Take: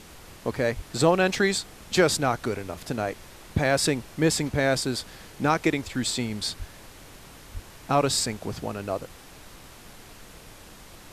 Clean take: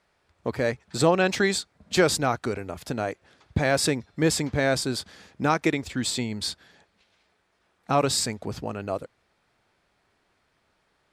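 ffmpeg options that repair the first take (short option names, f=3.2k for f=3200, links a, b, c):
-filter_complex "[0:a]asplit=3[a][b][c];[a]afade=t=out:st=0.75:d=0.02[d];[b]highpass=f=140:w=0.5412,highpass=f=140:w=1.3066,afade=t=in:st=0.75:d=0.02,afade=t=out:st=0.87:d=0.02[e];[c]afade=t=in:st=0.87:d=0.02[f];[d][e][f]amix=inputs=3:normalize=0,asplit=3[g][h][i];[g]afade=t=out:st=6.58:d=0.02[j];[h]highpass=f=140:w=0.5412,highpass=f=140:w=1.3066,afade=t=in:st=6.58:d=0.02,afade=t=out:st=6.7:d=0.02[k];[i]afade=t=in:st=6.7:d=0.02[l];[j][k][l]amix=inputs=3:normalize=0,asplit=3[m][n][o];[m]afade=t=out:st=7.53:d=0.02[p];[n]highpass=f=140:w=0.5412,highpass=f=140:w=1.3066,afade=t=in:st=7.53:d=0.02,afade=t=out:st=7.65:d=0.02[q];[o]afade=t=in:st=7.65:d=0.02[r];[p][q][r]amix=inputs=3:normalize=0,afftdn=nr=23:nf=-47"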